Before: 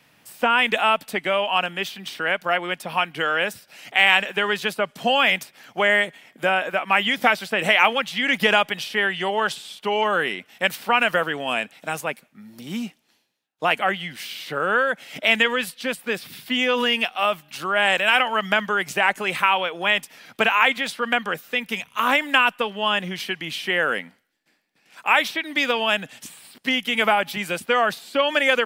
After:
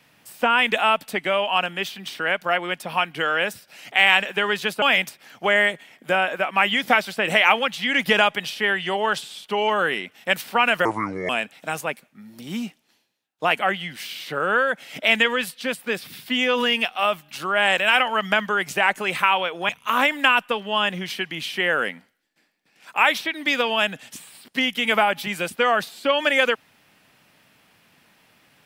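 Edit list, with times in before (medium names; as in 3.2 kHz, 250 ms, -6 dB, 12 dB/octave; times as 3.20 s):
4.82–5.16 s: delete
11.19–11.49 s: speed 68%
19.89–21.79 s: delete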